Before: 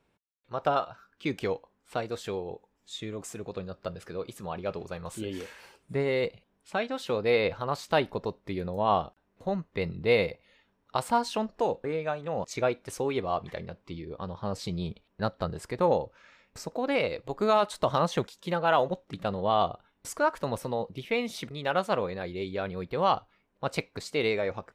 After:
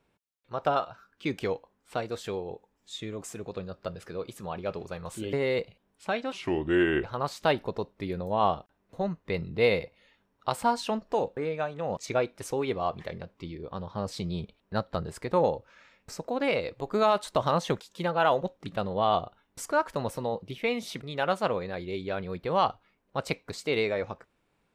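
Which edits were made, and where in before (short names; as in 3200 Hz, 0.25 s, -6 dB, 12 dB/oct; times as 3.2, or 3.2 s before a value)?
5.33–5.99 cut
6.98–7.51 speed 74%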